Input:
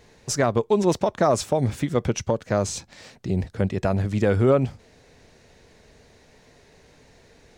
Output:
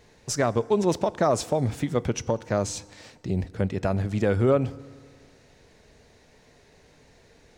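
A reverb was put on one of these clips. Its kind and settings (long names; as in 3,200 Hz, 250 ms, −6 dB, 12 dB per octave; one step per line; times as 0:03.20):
feedback delay network reverb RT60 1.9 s, low-frequency decay 0.9×, high-frequency decay 0.65×, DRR 18.5 dB
level −2.5 dB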